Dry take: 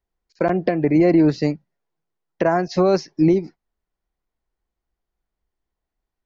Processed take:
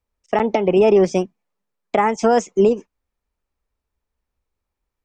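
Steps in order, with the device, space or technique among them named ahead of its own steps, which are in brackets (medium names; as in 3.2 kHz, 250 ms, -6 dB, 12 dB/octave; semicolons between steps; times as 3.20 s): nightcore (tape speed +24%); trim +1.5 dB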